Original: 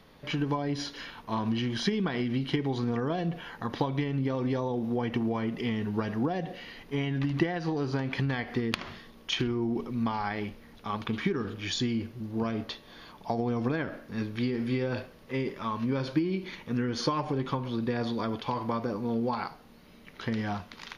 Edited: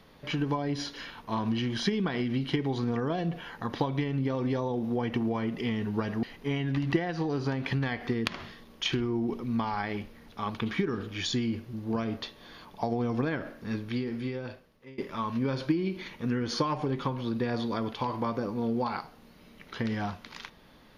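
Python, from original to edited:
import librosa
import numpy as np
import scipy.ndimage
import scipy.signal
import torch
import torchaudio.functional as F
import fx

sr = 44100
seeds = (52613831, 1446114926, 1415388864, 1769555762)

y = fx.edit(x, sr, fx.cut(start_s=6.23, length_s=0.47),
    fx.fade_out_to(start_s=14.15, length_s=1.3, floor_db=-21.0), tone=tone)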